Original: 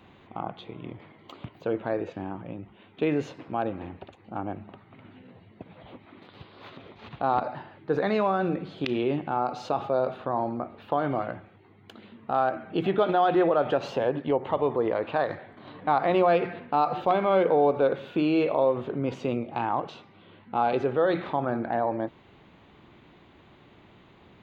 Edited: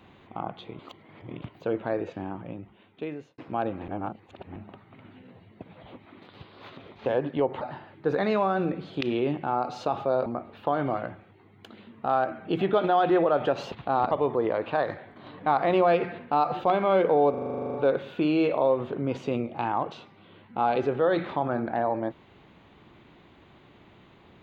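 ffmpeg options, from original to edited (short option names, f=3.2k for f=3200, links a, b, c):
-filter_complex "[0:a]asplit=22[a][b][c][d][e][f][g][h][i][j][k][l][m][n][o][p][q][r][s][t][u][v];[a]atrim=end=0.792[w];[b]atrim=start=0.788:end=1.422,asetpts=PTS-STARTPTS,areverse[x];[c]atrim=start=1.418:end=3.38,asetpts=PTS-STARTPTS,afade=t=out:st=1.072:d=0.89[y];[d]atrim=start=3.38:end=3.882,asetpts=PTS-STARTPTS,afade=t=in:d=0.004:c=hsin[z];[e]atrim=start=3.878:end=4.562,asetpts=PTS-STARTPTS,areverse[aa];[f]atrim=start=4.558:end=7.062[ab];[g]atrim=start=13.968:end=14.522[ac];[h]atrim=start=7.448:end=10.102[ad];[i]atrim=start=10.508:end=13.972[ae];[j]atrim=start=7.058:end=7.452[af];[k]atrim=start=14.518:end=17.752[ag];[l]atrim=start=17.708:end=17.752[ah];[m]atrim=start=17.708:end=17.752[ai];[n]atrim=start=17.708:end=17.752[aj];[o]atrim=start=17.708:end=17.752[ak];[p]atrim=start=17.708:end=17.752[al];[q]atrim=start=17.708:end=17.752[am];[r]atrim=start=17.708:end=17.752[an];[s]atrim=start=17.708:end=17.752[ao];[t]atrim=start=17.708:end=17.752[ap];[u]atrim=start=17.708:end=17.752[aq];[v]atrim=start=17.708[ar];[w][x]acrossfade=d=0.004:c1=hsin:c2=hsin[as];[y][z]concat=n=2:v=0:a=1[at];[as][at]acrossfade=d=0.004:c1=hsin:c2=hsin[au];[au][aa]acrossfade=d=0.004:c1=hsin:c2=hsin[av];[av][ab]acrossfade=d=0.004:c1=hsin:c2=hsin[aw];[aw][ac]acrossfade=d=0.004:c1=hsin:c2=hsin[ax];[ax][ad]acrossfade=d=0.004:c1=hsin:c2=hsin[ay];[ay][ae]acrossfade=d=0.004:c1=hsin:c2=hsin[az];[az][af]acrossfade=d=0.004:c1=hsin:c2=hsin[ba];[ba][ag]acrossfade=d=0.004:c1=hsin:c2=hsin[bb];[bb][ah]acrossfade=d=0.004:c1=hsin:c2=hsin[bc];[bc][ai]acrossfade=d=0.004:c1=hsin:c2=hsin[bd];[bd][aj]acrossfade=d=0.004:c1=hsin:c2=hsin[be];[be][ak]acrossfade=d=0.004:c1=hsin:c2=hsin[bf];[bf][al]acrossfade=d=0.004:c1=hsin:c2=hsin[bg];[bg][am]acrossfade=d=0.004:c1=hsin:c2=hsin[bh];[bh][an]acrossfade=d=0.004:c1=hsin:c2=hsin[bi];[bi][ao]acrossfade=d=0.004:c1=hsin:c2=hsin[bj];[bj][ap]acrossfade=d=0.004:c1=hsin:c2=hsin[bk];[bk][aq]acrossfade=d=0.004:c1=hsin:c2=hsin[bl];[bl][ar]acrossfade=d=0.004:c1=hsin:c2=hsin"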